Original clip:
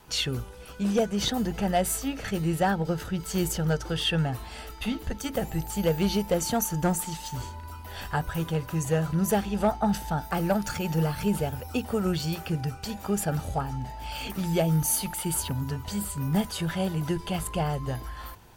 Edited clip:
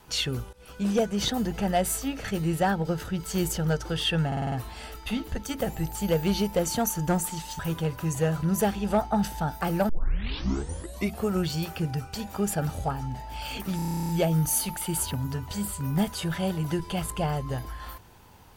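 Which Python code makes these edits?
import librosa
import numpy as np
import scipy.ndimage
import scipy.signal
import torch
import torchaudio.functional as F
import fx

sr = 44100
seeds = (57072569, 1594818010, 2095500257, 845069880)

y = fx.edit(x, sr, fx.fade_in_from(start_s=0.53, length_s=0.3, curve='qsin', floor_db=-20.0),
    fx.stutter(start_s=4.27, slice_s=0.05, count=6),
    fx.cut(start_s=7.34, length_s=0.95),
    fx.tape_start(start_s=10.59, length_s=1.42),
    fx.stutter(start_s=14.46, slice_s=0.03, count=12), tone=tone)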